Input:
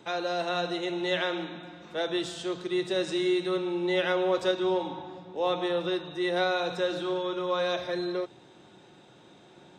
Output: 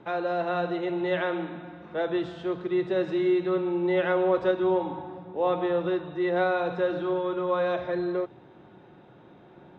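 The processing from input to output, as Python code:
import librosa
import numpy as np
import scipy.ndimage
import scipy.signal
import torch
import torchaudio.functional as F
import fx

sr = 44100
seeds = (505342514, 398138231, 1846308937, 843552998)

y = scipy.signal.sosfilt(scipy.signal.butter(2, 1800.0, 'lowpass', fs=sr, output='sos'), x)
y = fx.low_shelf(y, sr, hz=100.0, db=6.0)
y = y * 10.0 ** (2.5 / 20.0)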